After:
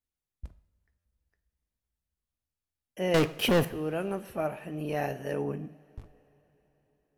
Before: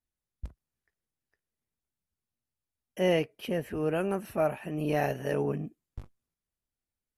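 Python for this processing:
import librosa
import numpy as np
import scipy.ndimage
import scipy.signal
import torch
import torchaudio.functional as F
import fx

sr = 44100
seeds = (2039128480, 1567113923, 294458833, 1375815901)

y = fx.leveller(x, sr, passes=5, at=(3.14, 3.65))
y = fx.rev_double_slope(y, sr, seeds[0], early_s=0.59, late_s=4.5, knee_db=-19, drr_db=12.5)
y = fx.buffer_glitch(y, sr, at_s=(0.98,), block=512, repeats=5)
y = y * librosa.db_to_amplitude(-3.0)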